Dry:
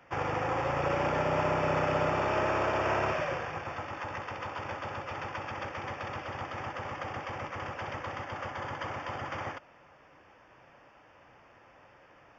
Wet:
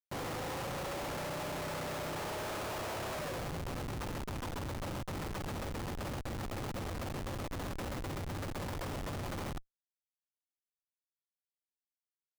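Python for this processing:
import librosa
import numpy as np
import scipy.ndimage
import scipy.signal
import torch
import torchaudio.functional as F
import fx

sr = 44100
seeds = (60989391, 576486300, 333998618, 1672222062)

y = fx.schmitt(x, sr, flips_db=-35.0)
y = y * librosa.db_to_amplitude(-4.5)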